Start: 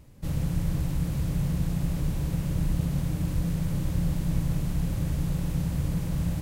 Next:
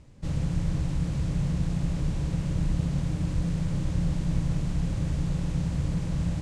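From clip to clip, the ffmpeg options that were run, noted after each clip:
-af "lowpass=f=8200:w=0.5412,lowpass=f=8200:w=1.3066"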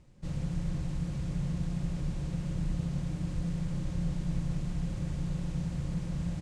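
-af "aecho=1:1:5.6:0.32,volume=0.473"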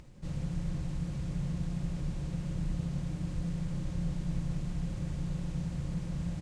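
-af "acompressor=mode=upward:threshold=0.00708:ratio=2.5,volume=0.841"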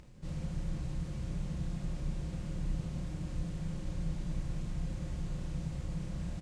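-filter_complex "[0:a]asplit=2[s0][s1];[s1]adelay=32,volume=0.531[s2];[s0][s2]amix=inputs=2:normalize=0,volume=0.75"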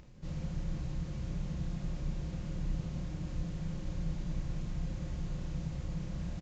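-af "aresample=16000,aresample=44100"

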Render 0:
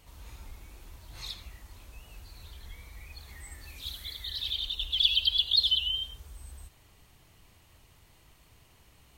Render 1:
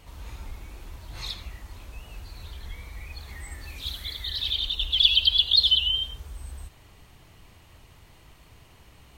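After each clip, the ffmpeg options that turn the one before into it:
-af "highshelf=f=5100:g=-7,volume=2.37"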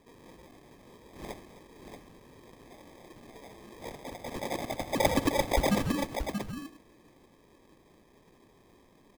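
-filter_complex "[0:a]highpass=f=1100:t=q:w=4.6,acrusher=samples=31:mix=1:aa=0.000001,asplit=2[s0][s1];[s1]aecho=0:1:260|631:0.15|0.447[s2];[s0][s2]amix=inputs=2:normalize=0,volume=0.422"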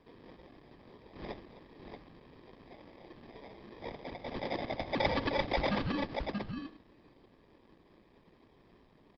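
-filter_complex "[0:a]acrossover=split=870|1500[s0][s1][s2];[s0]asoftclip=type=tanh:threshold=0.0335[s3];[s3][s1][s2]amix=inputs=3:normalize=0,aresample=11025,aresample=44100" -ar 48000 -c:a libopus -b:a 16k

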